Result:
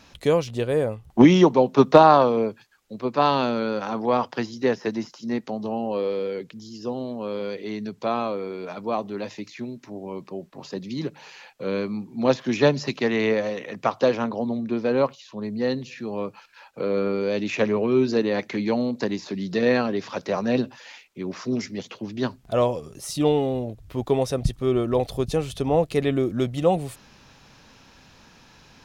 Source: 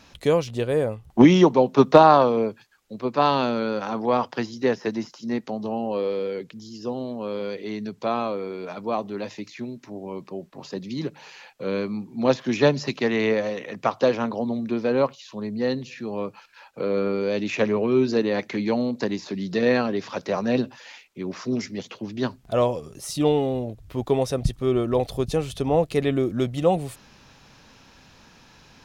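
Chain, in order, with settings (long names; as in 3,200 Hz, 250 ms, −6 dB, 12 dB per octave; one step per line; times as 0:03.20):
0:14.24–0:15.43: one half of a high-frequency compander decoder only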